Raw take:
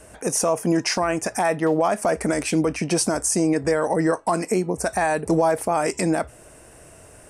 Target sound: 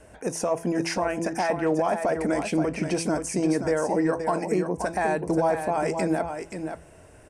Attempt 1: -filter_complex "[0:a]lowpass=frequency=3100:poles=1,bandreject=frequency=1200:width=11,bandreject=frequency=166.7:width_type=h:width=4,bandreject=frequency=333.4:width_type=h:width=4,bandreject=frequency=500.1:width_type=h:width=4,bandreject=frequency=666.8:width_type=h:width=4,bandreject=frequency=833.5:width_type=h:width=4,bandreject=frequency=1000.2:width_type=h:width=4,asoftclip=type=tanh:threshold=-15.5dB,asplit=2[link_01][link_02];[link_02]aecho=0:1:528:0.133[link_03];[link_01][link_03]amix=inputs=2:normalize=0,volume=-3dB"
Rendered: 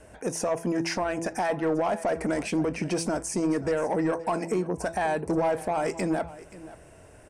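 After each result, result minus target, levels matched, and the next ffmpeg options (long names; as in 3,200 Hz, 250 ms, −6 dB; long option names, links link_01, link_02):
soft clipping: distortion +16 dB; echo-to-direct −10 dB
-filter_complex "[0:a]lowpass=frequency=3100:poles=1,bandreject=frequency=1200:width=11,bandreject=frequency=166.7:width_type=h:width=4,bandreject=frequency=333.4:width_type=h:width=4,bandreject=frequency=500.1:width_type=h:width=4,bandreject=frequency=666.8:width_type=h:width=4,bandreject=frequency=833.5:width_type=h:width=4,bandreject=frequency=1000.2:width_type=h:width=4,asoftclip=type=tanh:threshold=-5.5dB,asplit=2[link_01][link_02];[link_02]aecho=0:1:528:0.133[link_03];[link_01][link_03]amix=inputs=2:normalize=0,volume=-3dB"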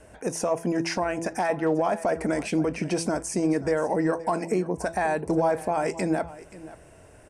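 echo-to-direct −10 dB
-filter_complex "[0:a]lowpass=frequency=3100:poles=1,bandreject=frequency=1200:width=11,bandreject=frequency=166.7:width_type=h:width=4,bandreject=frequency=333.4:width_type=h:width=4,bandreject=frequency=500.1:width_type=h:width=4,bandreject=frequency=666.8:width_type=h:width=4,bandreject=frequency=833.5:width_type=h:width=4,bandreject=frequency=1000.2:width_type=h:width=4,asoftclip=type=tanh:threshold=-5.5dB,asplit=2[link_01][link_02];[link_02]aecho=0:1:528:0.422[link_03];[link_01][link_03]amix=inputs=2:normalize=0,volume=-3dB"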